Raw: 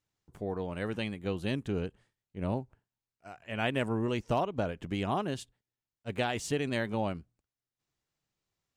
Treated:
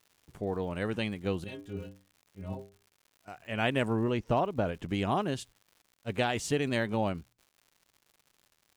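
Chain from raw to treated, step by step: 1.44–3.28 metallic resonator 94 Hz, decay 0.4 s, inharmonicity 0.008; 4.03–4.66 LPF 2700 Hz 6 dB/oct; crackle 180/s -51 dBFS; gain +2 dB

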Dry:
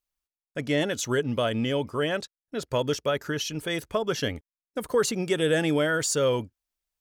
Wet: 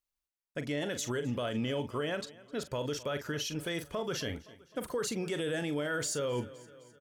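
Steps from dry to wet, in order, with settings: doubler 41 ms -11.5 dB; feedback echo 0.258 s, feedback 57%, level -24 dB; limiter -21.5 dBFS, peak gain reduction 9 dB; gain -4 dB

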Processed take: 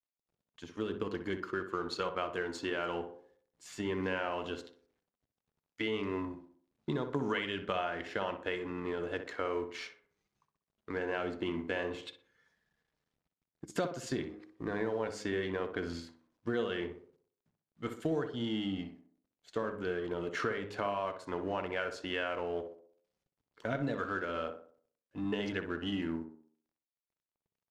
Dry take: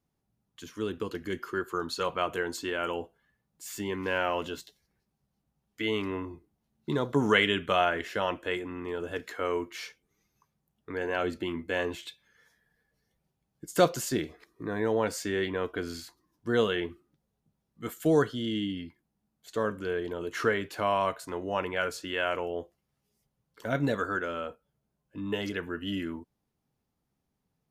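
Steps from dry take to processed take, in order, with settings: G.711 law mismatch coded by A; high shelf 10000 Hz -10.5 dB; de-hum 103.6 Hz, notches 5; compressor 6:1, threshold -33 dBFS, peak gain reduction 15.5 dB; air absorption 52 m; tape echo 62 ms, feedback 50%, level -7 dB, low-pass 1600 Hz; gain +2 dB

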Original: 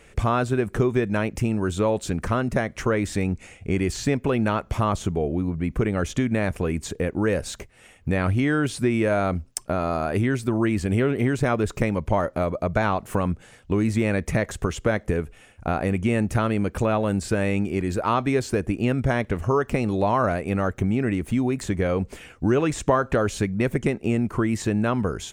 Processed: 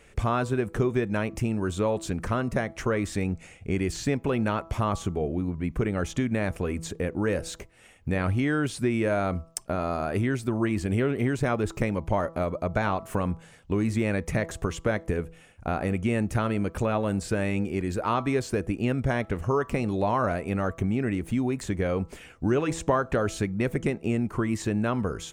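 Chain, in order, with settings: de-hum 164.4 Hz, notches 8; gain -3.5 dB

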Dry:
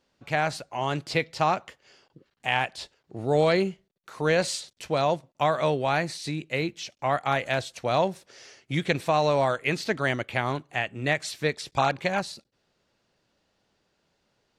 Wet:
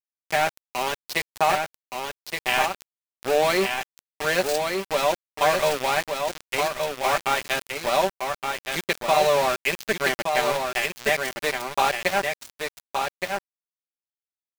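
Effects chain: rattling part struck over -40 dBFS, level -28 dBFS; HPF 350 Hz 12 dB/oct; comb 5.1 ms, depth 66%; in parallel at -2 dB: compressor 5:1, threshold -34 dBFS, peak gain reduction 15.5 dB; on the sum: sample gate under -23 dBFS; echo 1.17 s -5 dB

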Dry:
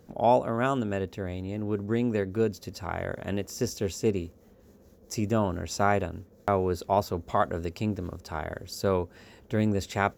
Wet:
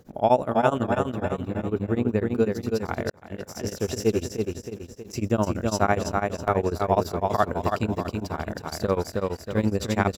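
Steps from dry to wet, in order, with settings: 0.93–2.28 bell 5600 Hz -7.5 dB 2.1 oct; feedback echo 0.318 s, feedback 47%, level -3.5 dB; 3.1–4.12 fade in equal-power; beating tremolo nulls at 12 Hz; gain +4.5 dB

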